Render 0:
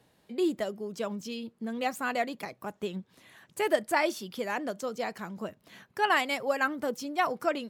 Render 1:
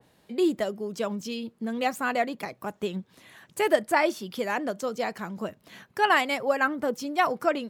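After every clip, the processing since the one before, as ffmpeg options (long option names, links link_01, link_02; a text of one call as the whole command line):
ffmpeg -i in.wav -af "adynamicequalizer=threshold=0.00708:dfrequency=2500:dqfactor=0.7:tfrequency=2500:tqfactor=0.7:attack=5:release=100:ratio=0.375:range=3.5:mode=cutabove:tftype=highshelf,volume=4dB" out.wav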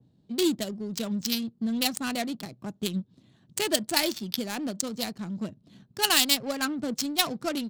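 ffmpeg -i in.wav -af "equalizer=frequency=125:width_type=o:width=1:gain=7,equalizer=frequency=250:width_type=o:width=1:gain=5,equalizer=frequency=500:width_type=o:width=1:gain=-7,equalizer=frequency=1000:width_type=o:width=1:gain=-7,equalizer=frequency=2000:width_type=o:width=1:gain=-10,equalizer=frequency=4000:width_type=o:width=1:gain=11,equalizer=frequency=8000:width_type=o:width=1:gain=11,adynamicsmooth=sensitivity=3.5:basefreq=660,crystalizer=i=4.5:c=0,volume=-1.5dB" out.wav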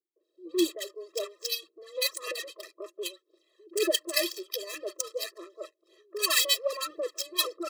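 ffmpeg -i in.wav -filter_complex "[0:a]aphaser=in_gain=1:out_gain=1:delay=2:decay=0.52:speed=1.9:type=sinusoidal,acrossover=split=190|1100[link_01][link_02][link_03];[link_02]adelay=160[link_04];[link_03]adelay=200[link_05];[link_01][link_04][link_05]amix=inputs=3:normalize=0,afftfilt=real='re*eq(mod(floor(b*sr/1024/340),2),1)':imag='im*eq(mod(floor(b*sr/1024/340),2),1)':win_size=1024:overlap=0.75" out.wav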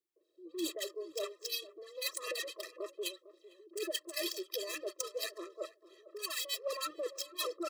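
ffmpeg -i in.wav -filter_complex "[0:a]areverse,acompressor=threshold=-34dB:ratio=10,areverse,asplit=2[link_01][link_02];[link_02]adelay=452,lowpass=frequency=820:poles=1,volume=-15dB,asplit=2[link_03][link_04];[link_04]adelay=452,lowpass=frequency=820:poles=1,volume=0.16[link_05];[link_01][link_03][link_05]amix=inputs=3:normalize=0" out.wav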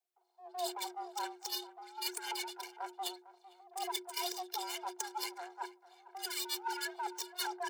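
ffmpeg -i in.wav -af "aeval=exprs='if(lt(val(0),0),0.447*val(0),val(0))':channel_layout=same,afreqshift=360,volume=1.5dB" out.wav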